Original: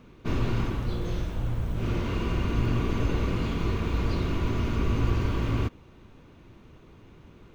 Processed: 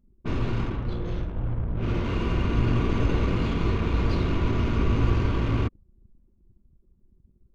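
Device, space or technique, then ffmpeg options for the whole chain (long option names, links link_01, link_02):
voice memo with heavy noise removal: -af "anlmdn=0.631,dynaudnorm=framelen=220:gausssize=17:maxgain=3dB"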